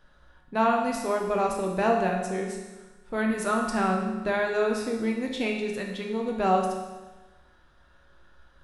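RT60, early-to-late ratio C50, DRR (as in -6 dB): 1.2 s, 3.5 dB, -0.5 dB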